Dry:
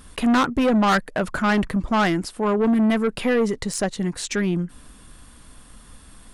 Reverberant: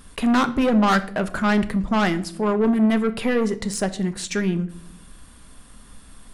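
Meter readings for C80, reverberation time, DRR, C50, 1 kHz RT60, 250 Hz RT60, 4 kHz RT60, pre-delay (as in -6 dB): 19.5 dB, 0.60 s, 10.0 dB, 16.5 dB, 0.50 s, 1.0 s, 0.40 s, 4 ms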